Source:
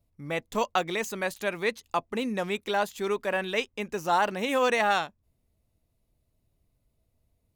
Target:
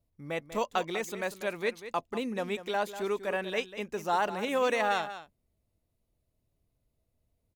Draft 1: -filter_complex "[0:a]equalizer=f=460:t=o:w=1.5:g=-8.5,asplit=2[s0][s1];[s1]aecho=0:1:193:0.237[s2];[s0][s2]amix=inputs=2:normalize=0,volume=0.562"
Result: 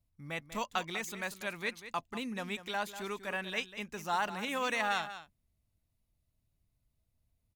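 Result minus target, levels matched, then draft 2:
500 Hz band -5.5 dB
-filter_complex "[0:a]equalizer=f=460:t=o:w=1.5:g=2.5,asplit=2[s0][s1];[s1]aecho=0:1:193:0.237[s2];[s0][s2]amix=inputs=2:normalize=0,volume=0.562"

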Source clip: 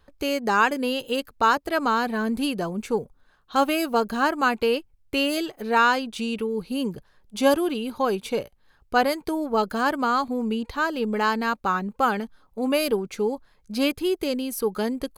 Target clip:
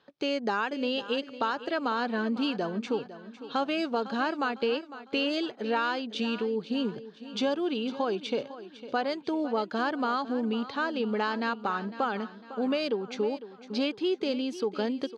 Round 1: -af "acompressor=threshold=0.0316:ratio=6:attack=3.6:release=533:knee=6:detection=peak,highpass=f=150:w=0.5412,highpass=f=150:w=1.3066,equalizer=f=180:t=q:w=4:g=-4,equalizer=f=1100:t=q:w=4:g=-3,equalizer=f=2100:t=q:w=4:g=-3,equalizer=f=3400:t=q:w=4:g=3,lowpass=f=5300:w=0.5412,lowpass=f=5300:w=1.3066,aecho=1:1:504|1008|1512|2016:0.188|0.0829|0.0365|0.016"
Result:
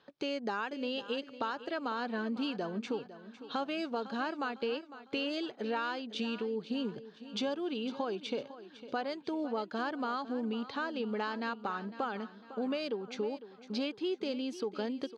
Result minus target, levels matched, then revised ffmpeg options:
compression: peak gain reduction +6.5 dB
-af "acompressor=threshold=0.0794:ratio=6:attack=3.6:release=533:knee=6:detection=peak,highpass=f=150:w=0.5412,highpass=f=150:w=1.3066,equalizer=f=180:t=q:w=4:g=-4,equalizer=f=1100:t=q:w=4:g=-3,equalizer=f=2100:t=q:w=4:g=-3,equalizer=f=3400:t=q:w=4:g=3,lowpass=f=5300:w=0.5412,lowpass=f=5300:w=1.3066,aecho=1:1:504|1008|1512|2016:0.188|0.0829|0.0365|0.016"

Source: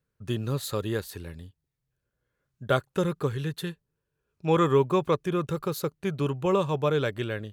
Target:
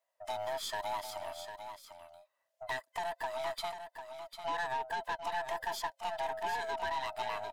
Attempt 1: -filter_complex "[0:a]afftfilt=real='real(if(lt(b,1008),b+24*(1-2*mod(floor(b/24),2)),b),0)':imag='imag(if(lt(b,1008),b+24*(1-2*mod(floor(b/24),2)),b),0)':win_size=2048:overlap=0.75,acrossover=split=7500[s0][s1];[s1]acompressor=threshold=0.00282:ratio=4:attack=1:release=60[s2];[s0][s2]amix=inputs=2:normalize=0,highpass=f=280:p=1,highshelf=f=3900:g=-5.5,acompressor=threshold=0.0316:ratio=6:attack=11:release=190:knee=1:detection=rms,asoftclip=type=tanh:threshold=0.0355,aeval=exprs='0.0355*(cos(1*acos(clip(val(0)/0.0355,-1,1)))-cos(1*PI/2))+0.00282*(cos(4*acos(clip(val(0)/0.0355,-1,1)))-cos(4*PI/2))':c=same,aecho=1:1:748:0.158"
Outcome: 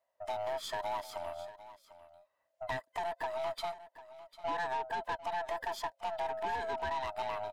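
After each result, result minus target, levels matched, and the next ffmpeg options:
8 kHz band -5.5 dB; echo-to-direct -7 dB; 250 Hz band +3.0 dB
-filter_complex "[0:a]afftfilt=real='real(if(lt(b,1008),b+24*(1-2*mod(floor(b/24),2)),b),0)':imag='imag(if(lt(b,1008),b+24*(1-2*mod(floor(b/24),2)),b),0)':win_size=2048:overlap=0.75,acrossover=split=7500[s0][s1];[s1]acompressor=threshold=0.00282:ratio=4:attack=1:release=60[s2];[s0][s2]amix=inputs=2:normalize=0,highpass=f=280:p=1,acompressor=threshold=0.0316:ratio=6:attack=11:release=190:knee=1:detection=rms,asoftclip=type=tanh:threshold=0.0355,aeval=exprs='0.0355*(cos(1*acos(clip(val(0)/0.0355,-1,1)))-cos(1*PI/2))+0.00282*(cos(4*acos(clip(val(0)/0.0355,-1,1)))-cos(4*PI/2))':c=same,aecho=1:1:748:0.158"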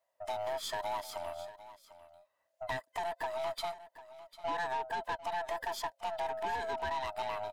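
echo-to-direct -7 dB; 250 Hz band +2.5 dB
-filter_complex "[0:a]afftfilt=real='real(if(lt(b,1008),b+24*(1-2*mod(floor(b/24),2)),b),0)':imag='imag(if(lt(b,1008),b+24*(1-2*mod(floor(b/24),2)),b),0)':win_size=2048:overlap=0.75,acrossover=split=7500[s0][s1];[s1]acompressor=threshold=0.00282:ratio=4:attack=1:release=60[s2];[s0][s2]amix=inputs=2:normalize=0,highpass=f=280:p=1,acompressor=threshold=0.0316:ratio=6:attack=11:release=190:knee=1:detection=rms,asoftclip=type=tanh:threshold=0.0355,aeval=exprs='0.0355*(cos(1*acos(clip(val(0)/0.0355,-1,1)))-cos(1*PI/2))+0.00282*(cos(4*acos(clip(val(0)/0.0355,-1,1)))-cos(4*PI/2))':c=same,aecho=1:1:748:0.355"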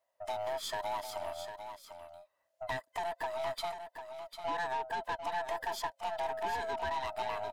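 250 Hz band +3.0 dB
-filter_complex "[0:a]afftfilt=real='real(if(lt(b,1008),b+24*(1-2*mod(floor(b/24),2)),b),0)':imag='imag(if(lt(b,1008),b+24*(1-2*mod(floor(b/24),2)),b),0)':win_size=2048:overlap=0.75,acrossover=split=7500[s0][s1];[s1]acompressor=threshold=0.00282:ratio=4:attack=1:release=60[s2];[s0][s2]amix=inputs=2:normalize=0,highpass=f=960:p=1,acompressor=threshold=0.0316:ratio=6:attack=11:release=190:knee=1:detection=rms,asoftclip=type=tanh:threshold=0.0355,aeval=exprs='0.0355*(cos(1*acos(clip(val(0)/0.0355,-1,1)))-cos(1*PI/2))+0.00282*(cos(4*acos(clip(val(0)/0.0355,-1,1)))-cos(4*PI/2))':c=same,aecho=1:1:748:0.355"

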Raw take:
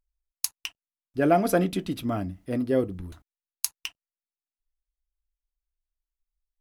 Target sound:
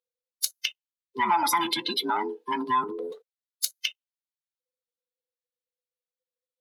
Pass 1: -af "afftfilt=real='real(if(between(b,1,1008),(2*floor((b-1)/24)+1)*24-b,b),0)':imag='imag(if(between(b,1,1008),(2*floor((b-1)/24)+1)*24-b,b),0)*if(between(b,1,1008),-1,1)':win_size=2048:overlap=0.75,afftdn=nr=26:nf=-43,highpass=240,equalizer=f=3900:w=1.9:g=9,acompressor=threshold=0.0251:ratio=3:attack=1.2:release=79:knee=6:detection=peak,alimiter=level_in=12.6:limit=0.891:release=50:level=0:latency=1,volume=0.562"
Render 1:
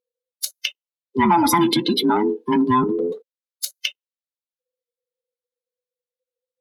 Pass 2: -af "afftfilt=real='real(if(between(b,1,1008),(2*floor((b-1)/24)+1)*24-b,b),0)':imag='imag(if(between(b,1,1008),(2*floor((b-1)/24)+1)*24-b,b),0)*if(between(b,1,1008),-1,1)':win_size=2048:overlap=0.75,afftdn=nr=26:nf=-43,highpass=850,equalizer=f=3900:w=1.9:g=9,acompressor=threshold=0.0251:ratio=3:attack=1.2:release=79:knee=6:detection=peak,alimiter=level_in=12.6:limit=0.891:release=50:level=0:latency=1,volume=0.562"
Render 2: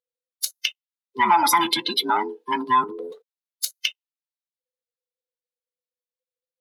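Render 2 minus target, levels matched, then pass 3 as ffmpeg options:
compression: peak gain reduction -6 dB
-af "afftfilt=real='real(if(between(b,1,1008),(2*floor((b-1)/24)+1)*24-b,b),0)':imag='imag(if(between(b,1,1008),(2*floor((b-1)/24)+1)*24-b,b),0)*if(between(b,1,1008),-1,1)':win_size=2048:overlap=0.75,afftdn=nr=26:nf=-43,highpass=850,equalizer=f=3900:w=1.9:g=9,acompressor=threshold=0.00891:ratio=3:attack=1.2:release=79:knee=6:detection=peak,alimiter=level_in=12.6:limit=0.891:release=50:level=0:latency=1,volume=0.562"

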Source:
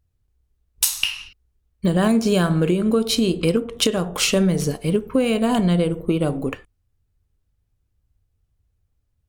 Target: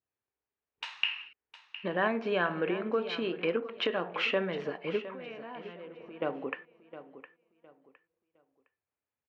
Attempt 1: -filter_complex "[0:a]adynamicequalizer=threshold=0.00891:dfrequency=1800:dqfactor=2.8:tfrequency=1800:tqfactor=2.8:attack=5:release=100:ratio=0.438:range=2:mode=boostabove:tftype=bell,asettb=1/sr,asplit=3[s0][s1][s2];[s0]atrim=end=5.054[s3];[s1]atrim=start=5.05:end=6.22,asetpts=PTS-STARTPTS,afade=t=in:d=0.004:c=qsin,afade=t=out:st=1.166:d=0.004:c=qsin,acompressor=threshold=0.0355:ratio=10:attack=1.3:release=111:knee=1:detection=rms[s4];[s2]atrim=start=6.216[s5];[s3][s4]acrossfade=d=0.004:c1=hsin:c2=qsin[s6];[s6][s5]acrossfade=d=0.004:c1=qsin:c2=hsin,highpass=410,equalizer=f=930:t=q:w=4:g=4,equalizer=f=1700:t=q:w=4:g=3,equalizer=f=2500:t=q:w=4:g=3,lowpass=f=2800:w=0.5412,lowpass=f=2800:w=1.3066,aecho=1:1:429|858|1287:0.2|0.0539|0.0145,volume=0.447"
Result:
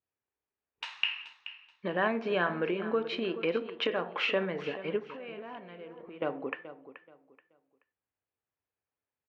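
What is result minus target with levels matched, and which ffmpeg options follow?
echo 282 ms early
-filter_complex "[0:a]adynamicequalizer=threshold=0.00891:dfrequency=1800:dqfactor=2.8:tfrequency=1800:tqfactor=2.8:attack=5:release=100:ratio=0.438:range=2:mode=boostabove:tftype=bell,asettb=1/sr,asplit=3[s0][s1][s2];[s0]atrim=end=5.054[s3];[s1]atrim=start=5.05:end=6.22,asetpts=PTS-STARTPTS,afade=t=in:d=0.004:c=qsin,afade=t=out:st=1.166:d=0.004:c=qsin,acompressor=threshold=0.0355:ratio=10:attack=1.3:release=111:knee=1:detection=rms[s4];[s2]atrim=start=6.216[s5];[s3][s4]acrossfade=d=0.004:c1=hsin:c2=qsin[s6];[s6][s5]acrossfade=d=0.004:c1=qsin:c2=hsin,highpass=410,equalizer=f=930:t=q:w=4:g=4,equalizer=f=1700:t=q:w=4:g=3,equalizer=f=2500:t=q:w=4:g=3,lowpass=f=2800:w=0.5412,lowpass=f=2800:w=1.3066,aecho=1:1:711|1422|2133:0.2|0.0539|0.0145,volume=0.447"

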